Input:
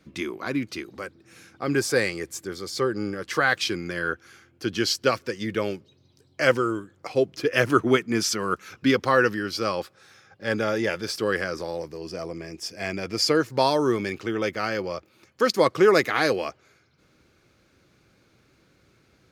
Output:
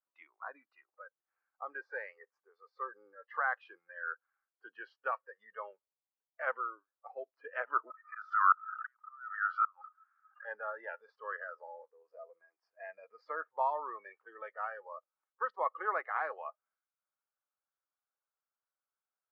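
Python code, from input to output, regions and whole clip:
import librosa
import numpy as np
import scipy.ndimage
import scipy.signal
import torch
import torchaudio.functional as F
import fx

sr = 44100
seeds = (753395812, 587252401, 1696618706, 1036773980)

y = fx.chain(x, sr, fx.gate_flip(shuts_db=-14.0, range_db=-35),
    fx.highpass_res(hz=1300.0, q=8.2),
    fx.pre_swell(db_per_s=75.0), at=(7.9, 10.45))
y = scipy.signal.sosfilt(scipy.signal.butter(4, 770.0, 'highpass', fs=sr, output='sos'), y)
y = fx.noise_reduce_blind(y, sr, reduce_db=21)
y = scipy.signal.sosfilt(scipy.signal.butter(4, 1400.0, 'lowpass', fs=sr, output='sos'), y)
y = y * 10.0 ** (-6.0 / 20.0)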